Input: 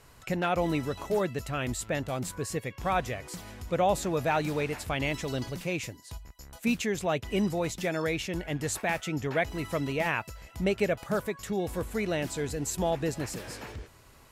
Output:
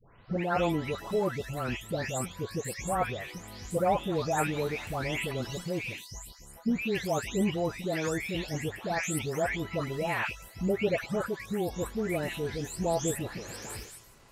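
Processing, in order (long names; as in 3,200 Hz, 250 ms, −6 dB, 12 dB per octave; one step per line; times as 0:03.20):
every frequency bin delayed by itself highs late, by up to 421 ms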